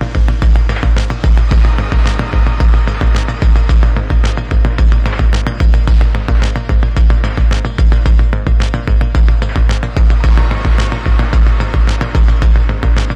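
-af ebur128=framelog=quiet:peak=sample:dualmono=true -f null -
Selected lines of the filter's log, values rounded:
Integrated loudness:
  I:          -9.8 LUFS
  Threshold: -19.8 LUFS
Loudness range:
  LRA:         0.5 LU
  Threshold: -29.8 LUFS
  LRA low:   -10.1 LUFS
  LRA high:   -9.6 LUFS
Sample peak:
  Peak:       -3.8 dBFS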